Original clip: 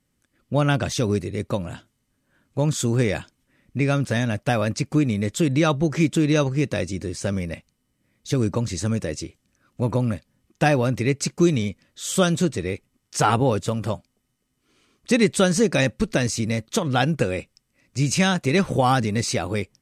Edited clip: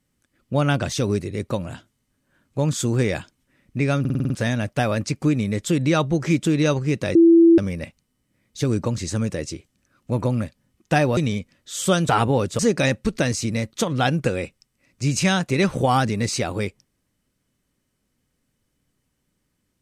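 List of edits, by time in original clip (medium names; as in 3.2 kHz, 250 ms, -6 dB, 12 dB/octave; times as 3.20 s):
4.00 s: stutter 0.05 s, 7 plays
6.85–7.28 s: bleep 334 Hz -8.5 dBFS
10.87–11.47 s: delete
12.39–13.21 s: delete
13.71–15.54 s: delete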